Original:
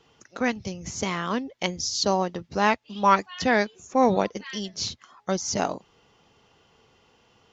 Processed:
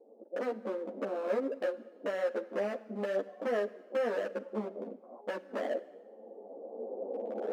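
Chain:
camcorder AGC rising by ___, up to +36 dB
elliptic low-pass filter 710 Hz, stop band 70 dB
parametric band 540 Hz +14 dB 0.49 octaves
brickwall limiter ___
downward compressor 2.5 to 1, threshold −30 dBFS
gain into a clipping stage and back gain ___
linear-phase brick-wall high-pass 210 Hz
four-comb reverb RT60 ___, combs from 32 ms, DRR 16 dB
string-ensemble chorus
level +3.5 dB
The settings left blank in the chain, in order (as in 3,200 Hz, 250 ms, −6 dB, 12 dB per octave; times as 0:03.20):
14 dB per second, −11.5 dBFS, 29.5 dB, 1.2 s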